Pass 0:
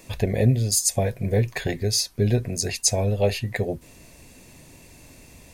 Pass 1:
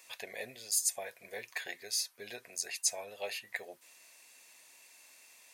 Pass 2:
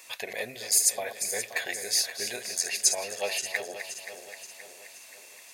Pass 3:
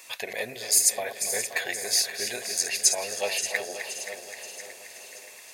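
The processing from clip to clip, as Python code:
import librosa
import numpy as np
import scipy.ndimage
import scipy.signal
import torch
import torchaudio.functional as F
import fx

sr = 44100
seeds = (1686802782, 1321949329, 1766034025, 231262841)

y1 = scipy.signal.sosfilt(scipy.signal.butter(2, 1100.0, 'highpass', fs=sr, output='sos'), x)
y1 = fx.dynamic_eq(y1, sr, hz=4800.0, q=0.77, threshold_db=-37.0, ratio=4.0, max_db=-5)
y1 = y1 * librosa.db_to_amplitude(-6.0)
y2 = fx.reverse_delay_fb(y1, sr, ms=263, feedback_pct=69, wet_db=-9.0)
y2 = y2 * librosa.db_to_amplitude(8.0)
y3 = fx.echo_alternate(y2, sr, ms=288, hz=1500.0, feedback_pct=74, wet_db=-11.5)
y3 = y3 * librosa.db_to_amplitude(2.0)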